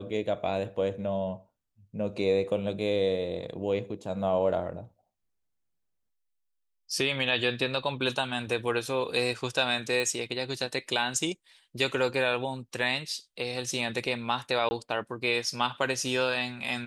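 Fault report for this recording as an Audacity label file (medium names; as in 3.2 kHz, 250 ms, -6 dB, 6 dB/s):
10.000000	10.000000	pop
14.690000	14.710000	dropout 20 ms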